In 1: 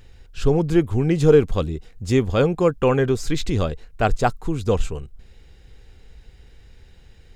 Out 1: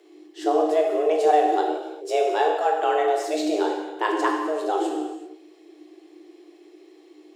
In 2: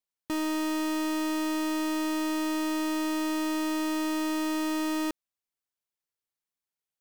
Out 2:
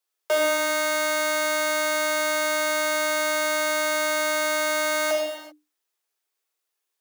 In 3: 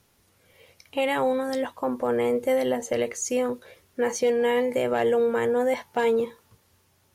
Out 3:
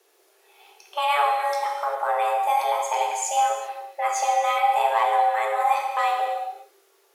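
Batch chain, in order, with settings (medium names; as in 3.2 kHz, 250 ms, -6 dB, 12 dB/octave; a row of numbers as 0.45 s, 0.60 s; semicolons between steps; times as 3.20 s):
gated-style reverb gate 420 ms falling, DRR -0.5 dB; frequency shift +300 Hz; normalise loudness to -23 LUFS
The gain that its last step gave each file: -6.5 dB, +7.0 dB, -0.5 dB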